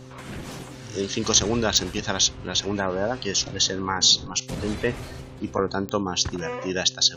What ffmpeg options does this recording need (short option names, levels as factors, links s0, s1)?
-af "adeclick=t=4,bandreject=f=129:t=h:w=4,bandreject=f=258:t=h:w=4,bandreject=f=387:t=h:w=4,bandreject=f=516:t=h:w=4"